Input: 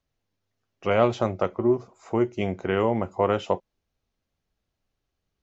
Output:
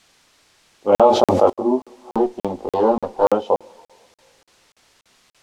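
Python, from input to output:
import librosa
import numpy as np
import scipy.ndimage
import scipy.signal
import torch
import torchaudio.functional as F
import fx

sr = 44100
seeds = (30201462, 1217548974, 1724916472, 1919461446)

y = fx.lower_of_two(x, sr, delay_ms=0.35, at=(2.14, 3.25))
y = fx.peak_eq(y, sr, hz=830.0, db=9.5, octaves=0.26)
y = fx.env_lowpass(y, sr, base_hz=310.0, full_db=-22.5)
y = fx.graphic_eq(y, sr, hz=(125, 250, 500, 1000, 2000, 4000), db=(-9, 12, 11, 10, -11, 8))
y = fx.rev_double_slope(y, sr, seeds[0], early_s=0.21, late_s=2.5, knee_db=-18, drr_db=17.0)
y = fx.chorus_voices(y, sr, voices=4, hz=0.42, base_ms=21, depth_ms=2.4, mix_pct=55)
y = fx.dmg_noise_colour(y, sr, seeds[1], colour='white', level_db=-49.0)
y = scipy.signal.sosfilt(scipy.signal.butter(2, 6200.0, 'lowpass', fs=sr, output='sos'), y)
y = fx.buffer_crackle(y, sr, first_s=0.95, period_s=0.29, block=2048, kind='zero')
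y = fx.env_flatten(y, sr, amount_pct=70, at=(0.92, 1.5))
y = F.gain(torch.from_numpy(y), -3.5).numpy()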